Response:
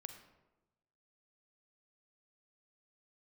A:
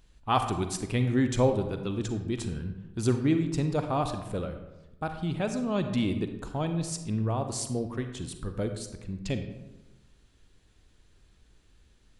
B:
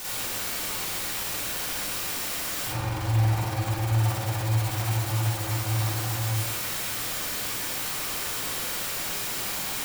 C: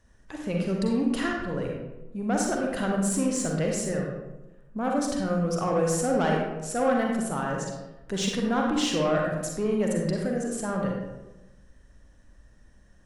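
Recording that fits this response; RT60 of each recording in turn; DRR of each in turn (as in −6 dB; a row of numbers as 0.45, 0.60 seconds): A; 1.1, 1.0, 1.0 seconds; 7.0, −8.0, −0.5 decibels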